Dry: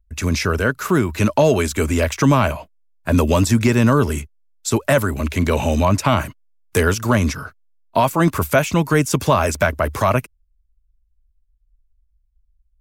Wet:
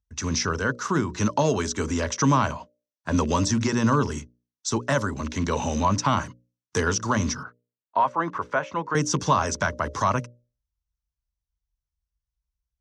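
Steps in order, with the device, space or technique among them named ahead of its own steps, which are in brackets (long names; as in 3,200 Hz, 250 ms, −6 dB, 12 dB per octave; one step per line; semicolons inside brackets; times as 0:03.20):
0:07.43–0:08.95: three-way crossover with the lows and the highs turned down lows −14 dB, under 370 Hz, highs −24 dB, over 2,600 Hz
mains-hum notches 60/120/180/240/300/360/420/480/540/600 Hz
car door speaker with a rattle (loose part that buzzes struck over −16 dBFS, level −26 dBFS; loudspeaker in its box 98–6,700 Hz, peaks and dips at 380 Hz −3 dB, 640 Hz −6 dB, 1,000 Hz +5 dB, 2,400 Hz −9 dB, 5,900 Hz +10 dB)
level −5 dB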